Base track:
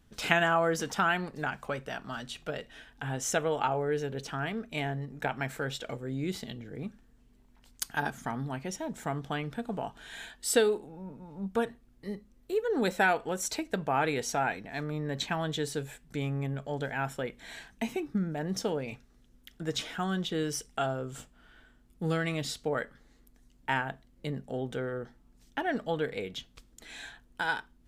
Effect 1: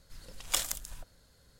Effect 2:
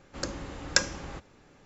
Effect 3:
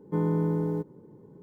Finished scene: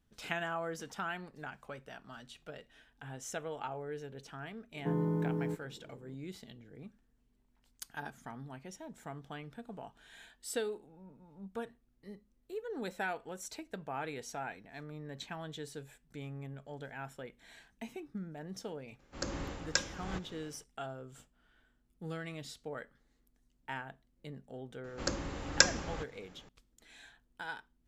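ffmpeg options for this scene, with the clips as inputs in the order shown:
-filter_complex "[2:a]asplit=2[s0][s1];[0:a]volume=0.266[s2];[s0]dynaudnorm=f=120:g=5:m=4.73[s3];[3:a]atrim=end=1.42,asetpts=PTS-STARTPTS,volume=0.473,afade=t=in:d=0.004:c=hsin,afade=t=out:st=1.416:d=0.004:c=hsin,adelay=208593S[s4];[s3]atrim=end=1.65,asetpts=PTS-STARTPTS,volume=0.355,afade=t=in:d=0.004:c=hsin,afade=t=out:st=1.646:d=0.004:c=hsin,adelay=18990[s5];[s1]atrim=end=1.65,asetpts=PTS-STARTPTS,volume=0.944,afade=t=in:d=0.004:c=hsin,afade=t=out:st=1.646:d=0.004:c=hsin,adelay=24840[s6];[s2][s4][s5][s6]amix=inputs=4:normalize=0"

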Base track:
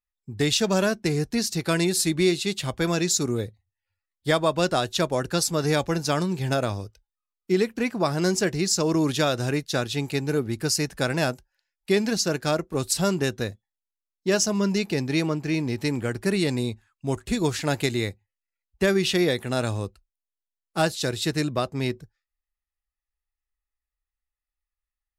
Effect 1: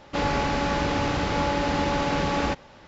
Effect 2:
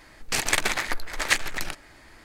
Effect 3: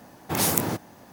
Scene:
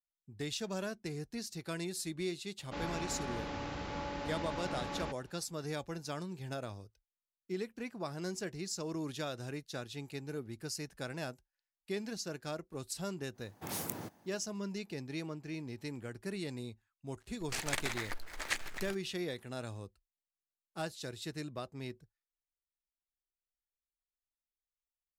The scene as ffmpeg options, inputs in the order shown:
-filter_complex "[0:a]volume=0.15[s0];[2:a]acrusher=bits=6:mix=0:aa=0.5[s1];[1:a]atrim=end=2.87,asetpts=PTS-STARTPTS,volume=0.168,afade=t=in:d=0.004:c=hsin,afade=t=out:st=2.866:d=0.004:c=hsin,adelay=2580[s2];[3:a]atrim=end=1.12,asetpts=PTS-STARTPTS,volume=0.158,afade=t=in:d=0.1,afade=t=out:st=1.02:d=0.1,adelay=587412S[s3];[s1]atrim=end=2.24,asetpts=PTS-STARTPTS,volume=0.224,afade=t=in:d=0.004:c=hsin,afade=t=out:st=2.236:d=0.004:c=hsin,adelay=17200[s4];[s0][s2][s3][s4]amix=inputs=4:normalize=0"

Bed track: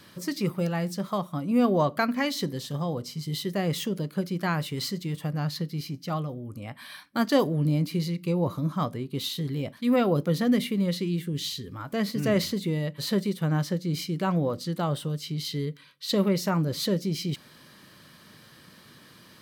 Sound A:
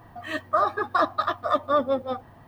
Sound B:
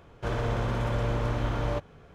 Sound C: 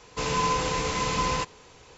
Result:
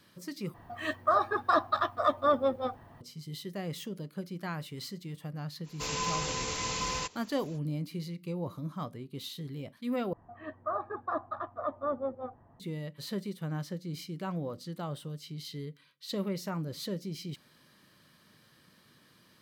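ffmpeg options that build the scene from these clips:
-filter_complex "[1:a]asplit=2[s0][s1];[0:a]volume=0.316[s2];[3:a]highshelf=f=3300:g=10.5[s3];[s1]lowpass=1200[s4];[s2]asplit=3[s5][s6][s7];[s5]atrim=end=0.544[s8];[s0]atrim=end=2.47,asetpts=PTS-STARTPTS,volume=0.668[s9];[s6]atrim=start=3.006:end=10.134[s10];[s4]atrim=end=2.47,asetpts=PTS-STARTPTS,volume=0.335[s11];[s7]atrim=start=12.596[s12];[s3]atrim=end=1.97,asetpts=PTS-STARTPTS,volume=0.335,afade=t=in:d=0.05,afade=t=out:st=1.92:d=0.05,adelay=5630[s13];[s8][s9]acrossfade=d=0.004:c1=hsin:c2=hsin[s14];[s14][s10]acrossfade=d=0.004:c1=hsin:c2=hsin[s15];[s15][s11]acrossfade=d=0.004:c1=hsin:c2=hsin[s16];[s16][s12]acrossfade=d=0.004:c1=hsin:c2=hsin[s17];[s17][s13]amix=inputs=2:normalize=0"

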